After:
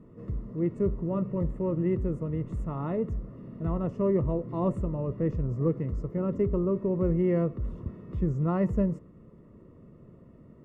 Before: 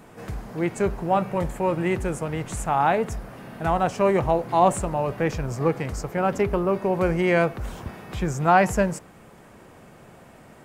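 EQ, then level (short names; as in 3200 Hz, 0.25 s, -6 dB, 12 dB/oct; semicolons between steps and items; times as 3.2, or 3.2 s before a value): running mean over 56 samples; 0.0 dB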